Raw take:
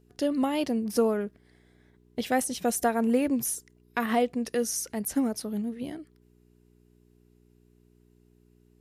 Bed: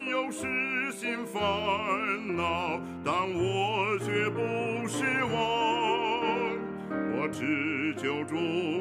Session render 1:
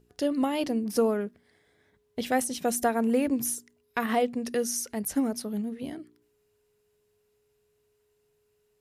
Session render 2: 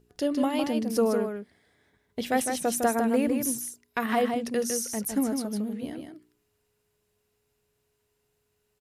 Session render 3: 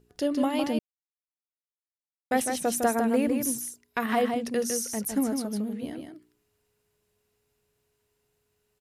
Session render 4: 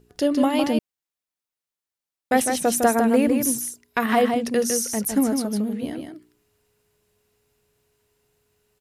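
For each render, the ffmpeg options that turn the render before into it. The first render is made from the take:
-af "bandreject=f=60:t=h:w=4,bandreject=f=120:t=h:w=4,bandreject=f=180:t=h:w=4,bandreject=f=240:t=h:w=4,bandreject=f=300:t=h:w=4,bandreject=f=360:t=h:w=4"
-af "aecho=1:1:156:0.531"
-filter_complex "[0:a]asplit=3[a][b][c];[a]atrim=end=0.79,asetpts=PTS-STARTPTS,afade=t=out:st=0.786:d=0.004:c=hsin[d];[b]atrim=start=0.79:end=2.31,asetpts=PTS-STARTPTS,volume=0[e];[c]atrim=start=2.31,asetpts=PTS-STARTPTS,afade=t=in:d=0.004:c=hsin[f];[d][e][f]concat=n=3:v=0:a=1"
-af "volume=6dB"

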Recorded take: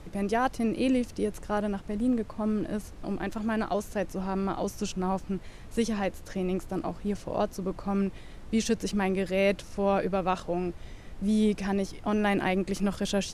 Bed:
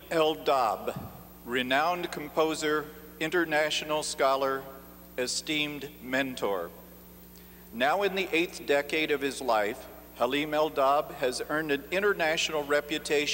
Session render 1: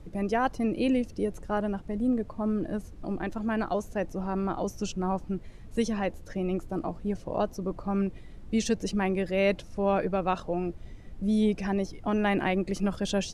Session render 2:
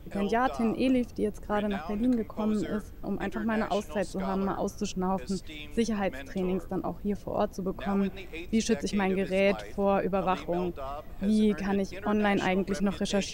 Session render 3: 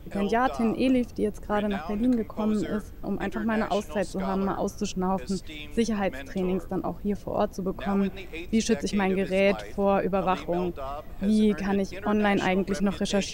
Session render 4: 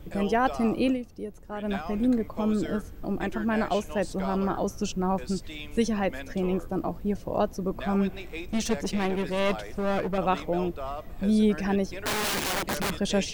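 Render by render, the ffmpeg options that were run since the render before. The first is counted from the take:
-af "afftdn=nr=9:nf=-45"
-filter_complex "[1:a]volume=-14dB[a];[0:a][a]amix=inputs=2:normalize=0"
-af "volume=2.5dB"
-filter_complex "[0:a]asettb=1/sr,asplit=3[a][b][c];[a]atrim=end=8.444[d];[b]atrim=start=8.44:end=10.18,asetpts=PTS-STARTPTS,afade=t=in:d=0.004:c=qsin,afade=t=out:st=1.736:d=0.004:c=qsin,aeval=exprs='clip(val(0),-1,0.0376)':c=same[e];[c]atrim=start=10.176[f];[d][e]acrossfade=d=0.004:c1=hsin:c2=qsin[g];[g][f]acrossfade=d=0.004:c1=qsin:c2=hsin,asettb=1/sr,asplit=3[h][i][j];[h]atrim=end=11.874[k];[i]atrim=start=11.87:end=12.99,asetpts=PTS-STARTPTS,afade=t=in:d=0.004:c=qsin,afade=t=out:st=1.116:d=0.004:c=qsin,aeval=exprs='(mod(14.1*val(0)+1,2)-1)/14.1':c=same[l];[j]atrim=start=12.986[m];[k][l]acrossfade=d=0.004:c1=hsin:c2=qsin[n];[n][m]acrossfade=d=0.004:c1=qsin:c2=hsin,asplit=3[o][p][q];[o]atrim=end=0.98,asetpts=PTS-STARTPTS,afade=t=out:st=0.81:d=0.17:c=qsin:silence=0.334965[r];[p]atrim=start=0.98:end=1.6,asetpts=PTS-STARTPTS,volume=-9.5dB[s];[q]atrim=start=1.6,asetpts=PTS-STARTPTS,afade=t=in:d=0.17:c=qsin:silence=0.334965[t];[r][s][t]concat=n=3:v=0:a=1"

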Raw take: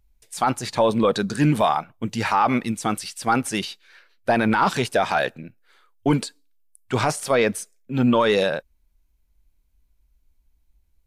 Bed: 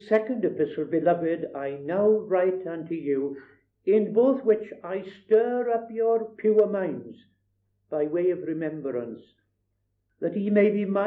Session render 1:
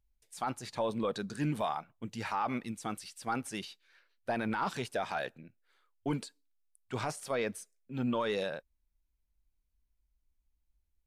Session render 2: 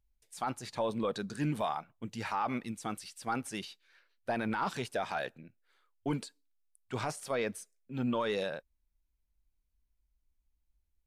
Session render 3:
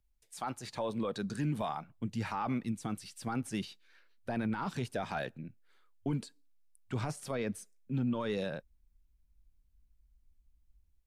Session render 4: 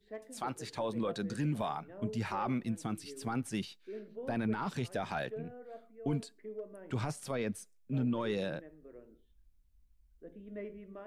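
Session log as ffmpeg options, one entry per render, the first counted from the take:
-af "volume=-14dB"
-af anull
-filter_complex "[0:a]acrossover=split=270|2700[a][b][c];[a]dynaudnorm=f=990:g=3:m=10.5dB[d];[d][b][c]amix=inputs=3:normalize=0,alimiter=level_in=1dB:limit=-24dB:level=0:latency=1:release=270,volume=-1dB"
-filter_complex "[1:a]volume=-23.5dB[a];[0:a][a]amix=inputs=2:normalize=0"

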